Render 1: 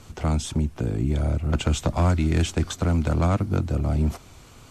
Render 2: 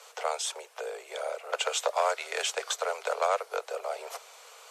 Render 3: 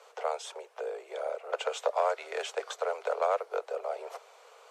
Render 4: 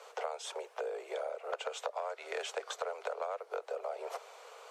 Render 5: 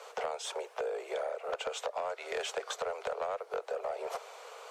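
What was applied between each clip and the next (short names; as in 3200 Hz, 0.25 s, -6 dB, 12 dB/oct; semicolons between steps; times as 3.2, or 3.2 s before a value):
steep high-pass 440 Hz 96 dB/oct; gain +1.5 dB
tilt -3.5 dB/oct; gain -2.5 dB
compressor 12:1, threshold -37 dBFS, peak gain reduction 15 dB; gain +3 dB
soft clip -30 dBFS, distortion -17 dB; gain +4 dB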